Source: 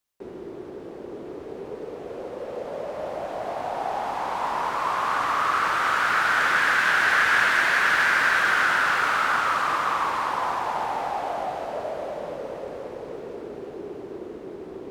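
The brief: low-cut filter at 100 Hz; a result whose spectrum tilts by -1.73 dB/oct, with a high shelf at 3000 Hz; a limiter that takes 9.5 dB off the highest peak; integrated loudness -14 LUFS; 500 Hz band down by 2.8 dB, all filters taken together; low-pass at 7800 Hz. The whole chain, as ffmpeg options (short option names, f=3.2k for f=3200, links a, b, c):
-af "highpass=100,lowpass=7.8k,equalizer=f=500:t=o:g=-4,highshelf=f=3k:g=7,volume=11.5dB,alimiter=limit=-5dB:level=0:latency=1"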